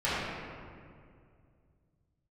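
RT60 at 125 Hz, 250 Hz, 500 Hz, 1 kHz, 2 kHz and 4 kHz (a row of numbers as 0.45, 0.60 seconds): 3.5, 2.8, 2.5, 2.0, 1.8, 1.3 seconds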